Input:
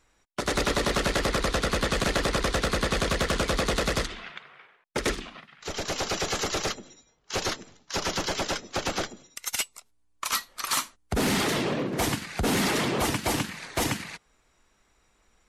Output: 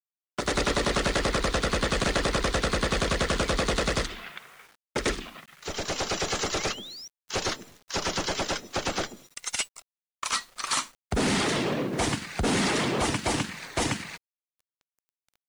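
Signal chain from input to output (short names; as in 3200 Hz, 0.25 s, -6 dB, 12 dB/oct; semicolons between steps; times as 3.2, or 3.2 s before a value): painted sound rise, 6.58–7.08, 2000–5900 Hz -42 dBFS; downsampling 22050 Hz; bit-crush 9-bit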